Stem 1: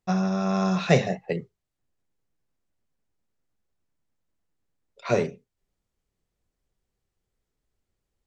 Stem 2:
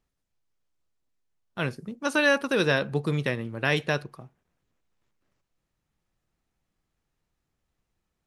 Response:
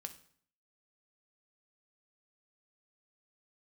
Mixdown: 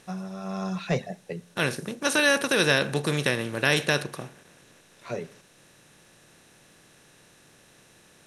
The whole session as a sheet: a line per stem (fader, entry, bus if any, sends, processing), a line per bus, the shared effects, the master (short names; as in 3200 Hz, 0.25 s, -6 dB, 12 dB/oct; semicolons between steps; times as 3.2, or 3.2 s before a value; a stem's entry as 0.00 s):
-10.5 dB, 0.00 s, send -12.5 dB, reverb removal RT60 0.57 s; soft clip -9.5 dBFS, distortion -20 dB; AGC gain up to 11.5 dB; auto duck -12 dB, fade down 2.00 s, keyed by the second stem
-2.5 dB, 0.00 s, no send, per-bin compression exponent 0.6; bell 10000 Hz +13 dB 2 oct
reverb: on, RT60 0.55 s, pre-delay 3 ms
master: dry